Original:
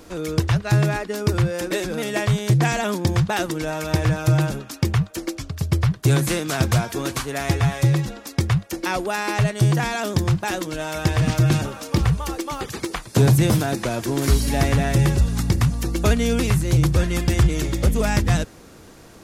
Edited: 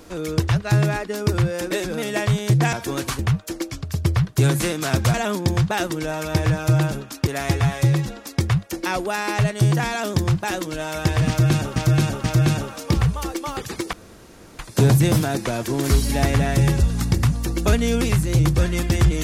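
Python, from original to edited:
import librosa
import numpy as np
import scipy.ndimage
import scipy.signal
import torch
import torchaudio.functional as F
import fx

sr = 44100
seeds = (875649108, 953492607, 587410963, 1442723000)

y = fx.edit(x, sr, fx.swap(start_s=2.73, length_s=2.13, other_s=6.81, other_length_s=0.46),
    fx.repeat(start_s=11.28, length_s=0.48, count=3),
    fx.insert_room_tone(at_s=12.97, length_s=0.66), tone=tone)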